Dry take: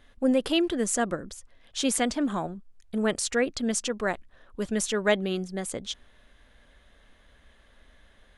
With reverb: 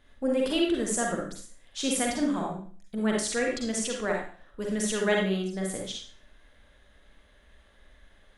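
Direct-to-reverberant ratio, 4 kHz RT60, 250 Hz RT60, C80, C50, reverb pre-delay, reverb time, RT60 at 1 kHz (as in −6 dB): −1.5 dB, 0.45 s, 0.45 s, 7.5 dB, 1.5 dB, 39 ms, 0.45 s, 0.45 s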